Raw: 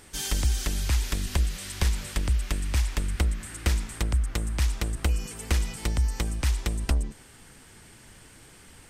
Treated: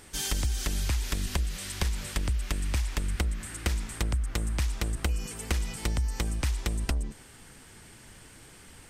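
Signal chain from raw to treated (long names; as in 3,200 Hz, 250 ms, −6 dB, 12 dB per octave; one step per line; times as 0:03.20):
downward compressor, threshold −24 dBFS, peak gain reduction 6 dB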